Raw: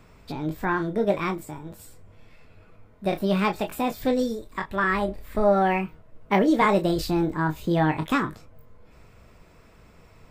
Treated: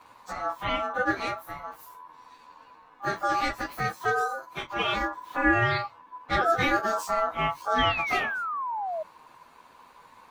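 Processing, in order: inharmonic rescaling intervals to 113%; in parallel at -1.5 dB: compressor, threshold -38 dBFS, peak gain reduction 20.5 dB; on the sum: ring modulator 1000 Hz; painted sound fall, 7.78–9.03, 610–3300 Hz -31 dBFS

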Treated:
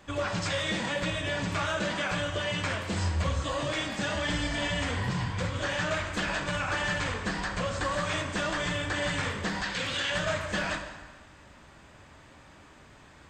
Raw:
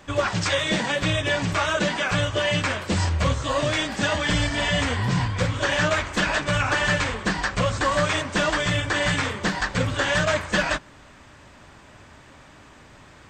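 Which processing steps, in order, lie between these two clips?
9.63–10.1 weighting filter D; limiter -16.5 dBFS, peak gain reduction 10.5 dB; notch 5700 Hz, Q 28; plate-style reverb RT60 1.4 s, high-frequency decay 0.85×, DRR 5 dB; gain -6 dB

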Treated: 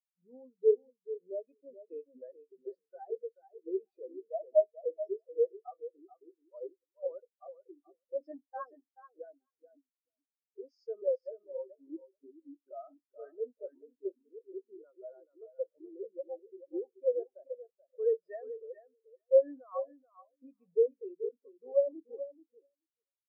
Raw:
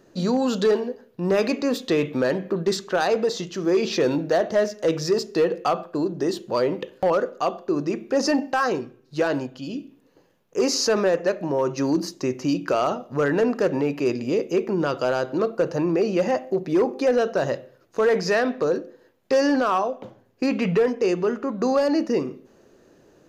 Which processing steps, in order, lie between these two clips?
HPF 570 Hz 6 dB/oct; on a send: feedback echo 0.432 s, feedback 37%, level -3.5 dB; on the sum: spectral expander 4:1; gain -5 dB

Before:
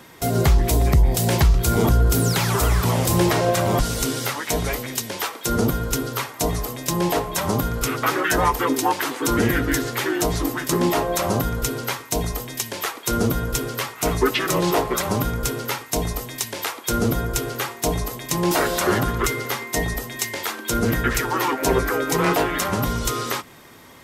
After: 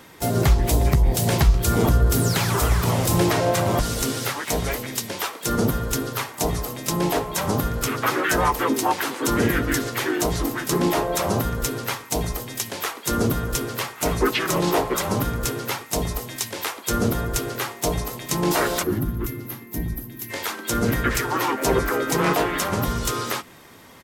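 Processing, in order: spectral gain 18.83–20.3, 380–11000 Hz -15 dB; harmoniser -3 st -10 dB, +4 st -13 dB; gain -1.5 dB

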